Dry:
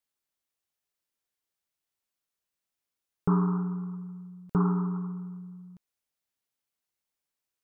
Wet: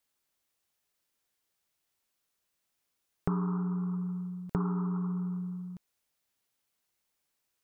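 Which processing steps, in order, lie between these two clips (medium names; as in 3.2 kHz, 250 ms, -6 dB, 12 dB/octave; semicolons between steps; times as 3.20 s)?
compression 4:1, threshold -37 dBFS, peak gain reduction 14 dB; trim +6.5 dB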